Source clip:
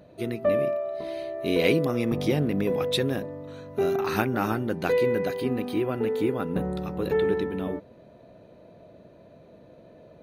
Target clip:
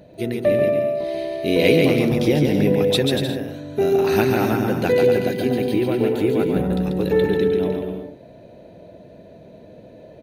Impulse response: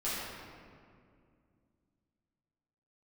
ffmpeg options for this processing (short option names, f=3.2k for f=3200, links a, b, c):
-filter_complex "[0:a]equalizer=f=1.2k:t=o:w=0.44:g=-11,asplit=2[a][b];[b]aecho=0:1:140|238|306.6|354.6|388.2:0.631|0.398|0.251|0.158|0.1[c];[a][c]amix=inputs=2:normalize=0,volume=5.5dB"